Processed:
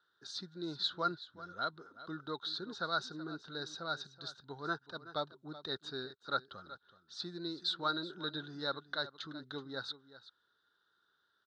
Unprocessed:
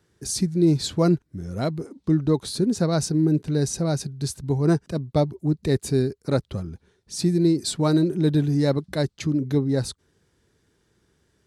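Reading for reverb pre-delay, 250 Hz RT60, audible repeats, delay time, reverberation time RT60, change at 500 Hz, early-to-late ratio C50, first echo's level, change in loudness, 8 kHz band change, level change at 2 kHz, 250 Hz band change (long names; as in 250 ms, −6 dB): no reverb audible, no reverb audible, 1, 377 ms, no reverb audible, −19.0 dB, no reverb audible, −15.5 dB, −16.5 dB, −25.5 dB, −1.5 dB, −24.0 dB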